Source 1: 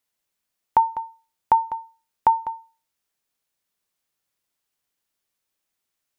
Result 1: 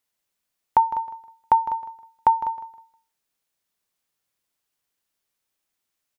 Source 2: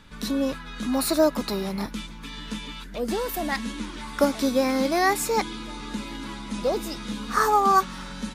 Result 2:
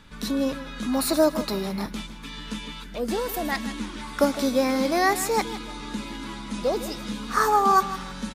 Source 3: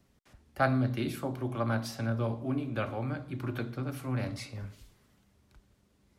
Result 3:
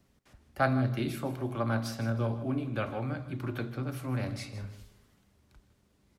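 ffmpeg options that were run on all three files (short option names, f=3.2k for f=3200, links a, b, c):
-af "aecho=1:1:157|314|471:0.2|0.0539|0.0145"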